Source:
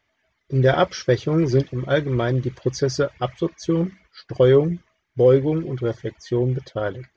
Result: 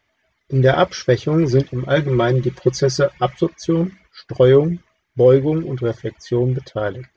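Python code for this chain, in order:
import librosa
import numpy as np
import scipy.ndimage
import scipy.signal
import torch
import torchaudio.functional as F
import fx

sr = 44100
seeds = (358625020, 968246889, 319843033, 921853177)

y = fx.comb(x, sr, ms=5.5, depth=0.8, at=(1.96, 3.44))
y = F.gain(torch.from_numpy(y), 3.0).numpy()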